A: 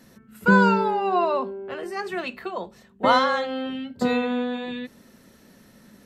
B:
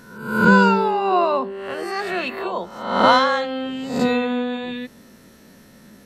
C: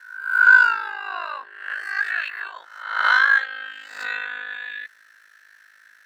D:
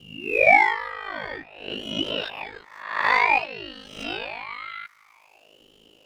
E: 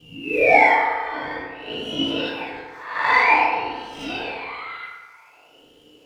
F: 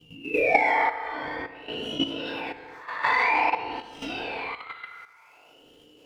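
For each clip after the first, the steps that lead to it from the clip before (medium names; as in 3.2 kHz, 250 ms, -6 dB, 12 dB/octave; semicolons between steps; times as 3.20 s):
reverse spectral sustain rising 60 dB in 0.74 s; trim +2.5 dB
median filter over 3 samples; ring modulator 26 Hz; resonant high-pass 1.6 kHz, resonance Q 9.7; trim -4.5 dB
ring modulator with a swept carrier 840 Hz, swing 60%, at 0.52 Hz
FDN reverb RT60 1.4 s, low-frequency decay 0.75×, high-frequency decay 0.5×, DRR -6.5 dB; trim -4 dB
level held to a coarse grid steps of 11 dB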